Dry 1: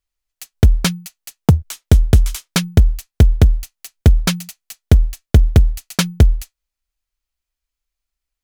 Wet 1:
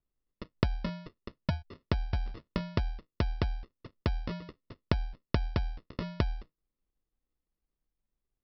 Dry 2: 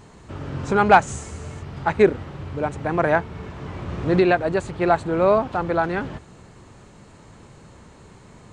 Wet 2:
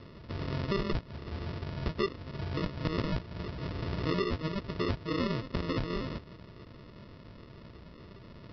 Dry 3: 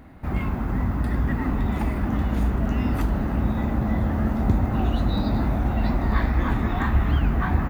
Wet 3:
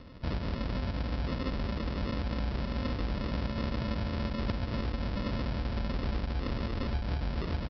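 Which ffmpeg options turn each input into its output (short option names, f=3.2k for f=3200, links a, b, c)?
-af "acompressor=threshold=-26dB:ratio=6,aresample=11025,acrusher=samples=14:mix=1:aa=0.000001,aresample=44100,volume=-3dB"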